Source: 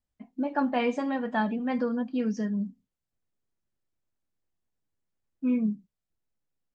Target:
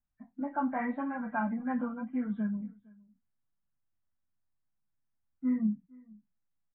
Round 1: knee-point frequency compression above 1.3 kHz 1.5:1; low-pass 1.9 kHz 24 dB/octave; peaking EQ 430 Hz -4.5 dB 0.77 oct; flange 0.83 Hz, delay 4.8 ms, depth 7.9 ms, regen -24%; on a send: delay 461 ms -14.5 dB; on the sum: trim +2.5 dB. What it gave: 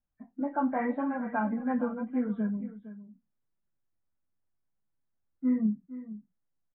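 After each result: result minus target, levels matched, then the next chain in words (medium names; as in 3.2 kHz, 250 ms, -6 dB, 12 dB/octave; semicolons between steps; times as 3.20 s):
echo-to-direct +10.5 dB; 500 Hz band +4.0 dB
knee-point frequency compression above 1.3 kHz 1.5:1; low-pass 1.9 kHz 24 dB/octave; peaking EQ 430 Hz -4.5 dB 0.77 oct; flange 0.83 Hz, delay 4.8 ms, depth 7.9 ms, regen -24%; on a send: delay 461 ms -25 dB; on the sum: trim +2.5 dB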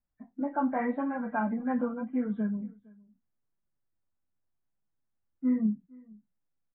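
500 Hz band +4.0 dB
knee-point frequency compression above 1.3 kHz 1.5:1; low-pass 1.9 kHz 24 dB/octave; peaking EQ 430 Hz -15.5 dB 0.77 oct; flange 0.83 Hz, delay 4.8 ms, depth 7.9 ms, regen -24%; on a send: delay 461 ms -25 dB; on the sum: trim +2.5 dB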